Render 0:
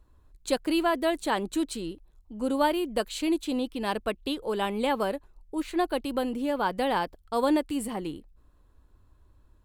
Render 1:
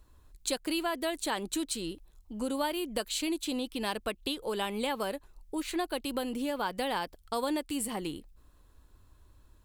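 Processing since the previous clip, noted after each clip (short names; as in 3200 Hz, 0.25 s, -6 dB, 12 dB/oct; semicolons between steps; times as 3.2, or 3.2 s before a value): high shelf 2300 Hz +9.5 dB; compressor 2.5:1, threshold -32 dBFS, peak gain reduction 9.5 dB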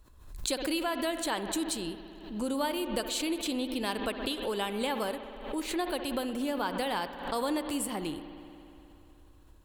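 spring tank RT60 3 s, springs 59 ms, chirp 35 ms, DRR 9.5 dB; backwards sustainer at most 80 dB/s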